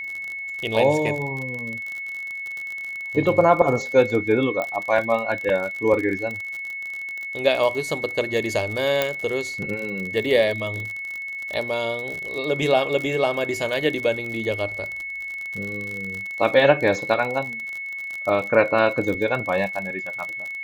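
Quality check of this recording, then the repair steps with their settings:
surface crackle 43 per second −27 dBFS
whistle 2,200 Hz −29 dBFS
0:04.62: click −14 dBFS
0:09.02: click −6 dBFS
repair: click removal
notch filter 2,200 Hz, Q 30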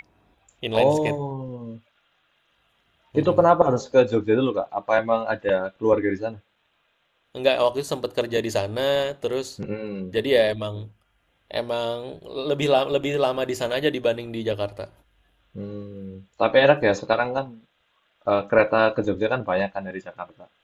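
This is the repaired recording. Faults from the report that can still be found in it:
0:09.02: click

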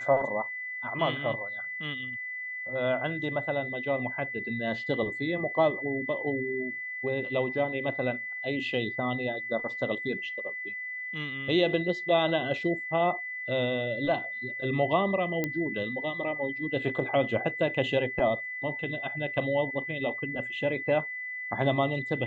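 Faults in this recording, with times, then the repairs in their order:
whistle 2,000 Hz −34 dBFS
0:15.44: click −15 dBFS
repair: click removal
notch filter 2,000 Hz, Q 30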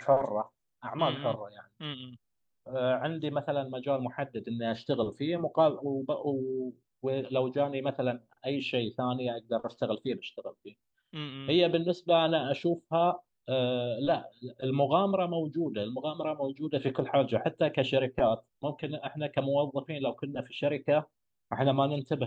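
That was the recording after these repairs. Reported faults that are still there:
none of them is left

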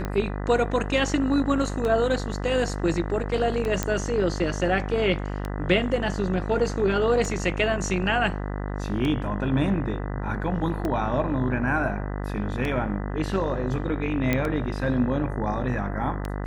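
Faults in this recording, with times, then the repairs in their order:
mains buzz 50 Hz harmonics 40 −30 dBFS
scratch tick 33 1/3 rpm −16 dBFS
0:03.83: click −9 dBFS
0:14.33: click −10 dBFS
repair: click removal
hum removal 50 Hz, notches 40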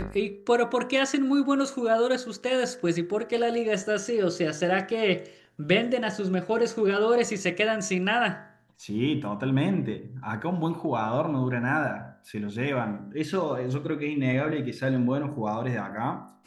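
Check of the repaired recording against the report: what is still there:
none of them is left

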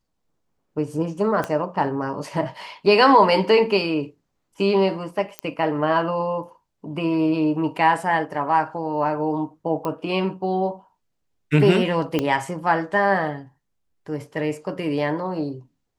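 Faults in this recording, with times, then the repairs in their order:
0:01.44: click −12 dBFS
0:05.39: click −12 dBFS
0:09.85: click −15 dBFS
0:12.19: click −9 dBFS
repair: click removal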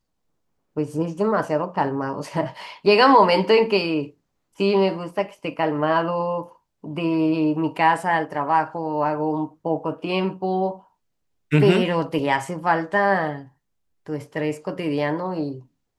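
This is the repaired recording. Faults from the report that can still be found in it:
0:01.44: click
0:12.19: click

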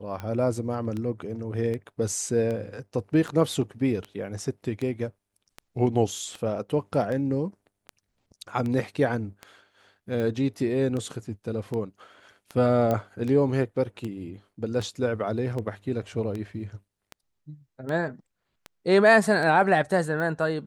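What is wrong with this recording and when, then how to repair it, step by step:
scratch tick 78 rpm −21 dBFS
0:12.91: click −14 dBFS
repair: click removal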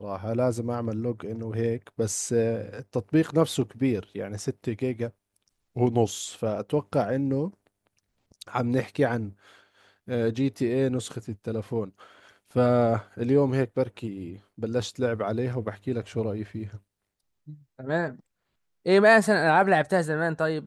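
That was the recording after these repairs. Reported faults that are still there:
0:12.91: click

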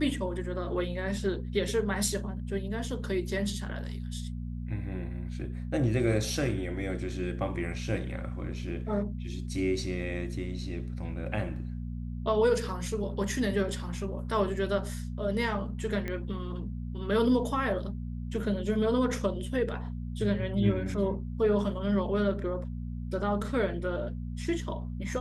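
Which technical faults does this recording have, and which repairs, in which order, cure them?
mains hum 60 Hz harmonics 4 −36 dBFS
0:16.08: click −21 dBFS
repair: click removal
hum removal 60 Hz, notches 4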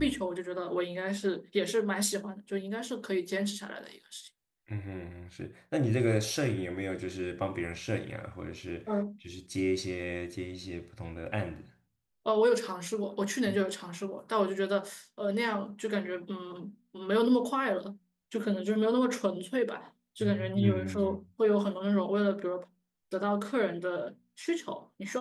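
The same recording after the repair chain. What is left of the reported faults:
none of them is left

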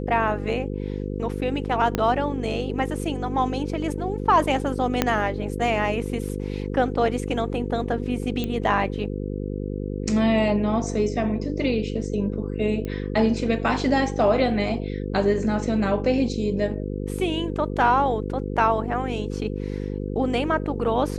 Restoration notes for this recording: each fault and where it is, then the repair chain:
mains buzz 50 Hz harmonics 10 −29 dBFS
0:01.95: click −8 dBFS
0:05.02: click −4 dBFS
0:08.44: click −14 dBFS
0:12.85: click −19 dBFS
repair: click removal
hum removal 50 Hz, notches 10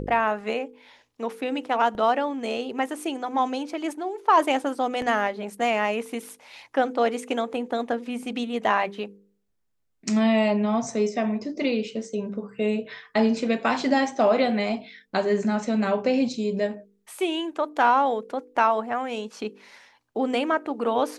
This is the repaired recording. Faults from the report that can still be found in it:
0:01.95: click
0:05.02: click

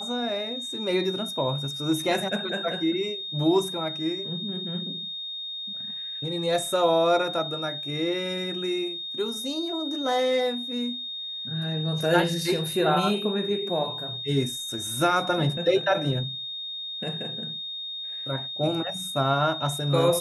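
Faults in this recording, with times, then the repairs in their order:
whistle 3,700 Hz −32 dBFS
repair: notch filter 3,700 Hz, Q 30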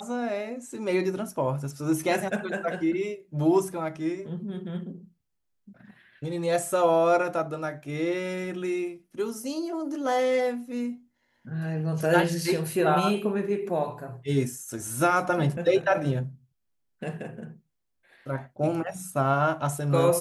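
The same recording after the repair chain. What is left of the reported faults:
none of them is left

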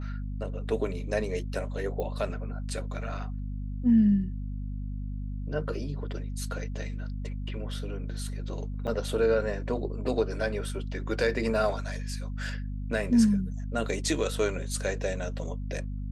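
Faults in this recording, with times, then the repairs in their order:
mains hum 50 Hz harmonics 5 −34 dBFS
0:02.00: click −22 dBFS
0:08.87–0:08.88: drop-out 6.7 ms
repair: click removal
hum removal 50 Hz, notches 5
repair the gap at 0:08.87, 6.7 ms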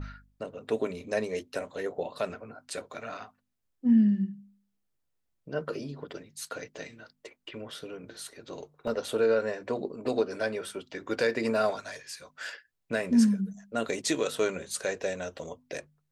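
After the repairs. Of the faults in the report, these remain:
none of them is left

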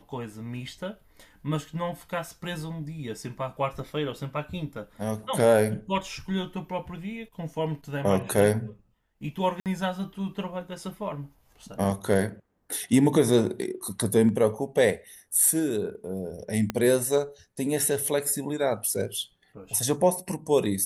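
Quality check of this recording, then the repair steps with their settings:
0:09.60–0:09.66: drop-out 58 ms
0:16.70: click −13 dBFS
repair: click removal
repair the gap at 0:09.60, 58 ms

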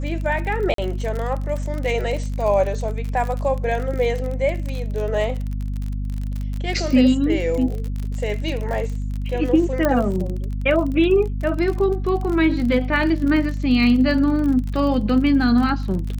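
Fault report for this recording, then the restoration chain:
surface crackle 38 per second −26 dBFS
mains hum 50 Hz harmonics 5 −25 dBFS
0:00.74–0:00.78: drop-out 43 ms
0:09.85: click −7 dBFS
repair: click removal
hum removal 50 Hz, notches 5
repair the gap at 0:00.74, 43 ms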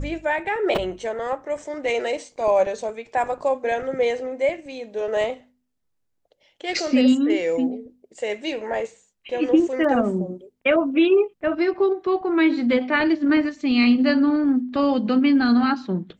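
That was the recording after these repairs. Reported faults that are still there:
0:09.85: click

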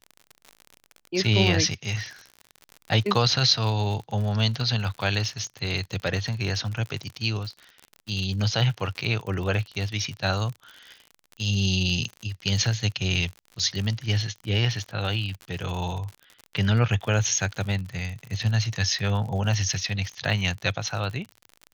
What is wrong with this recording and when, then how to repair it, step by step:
surface crackle 58 per second −32 dBFS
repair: click removal

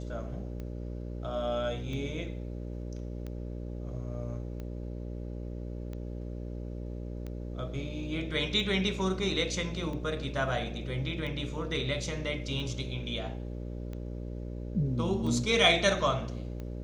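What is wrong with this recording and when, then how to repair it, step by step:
mains buzz 60 Hz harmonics 10 −38 dBFS
scratch tick 45 rpm −28 dBFS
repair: click removal
hum removal 60 Hz, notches 10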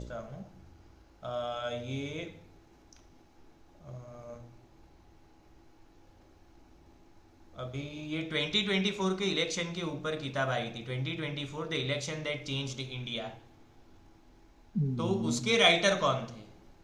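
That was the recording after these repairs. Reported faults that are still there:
none of them is left

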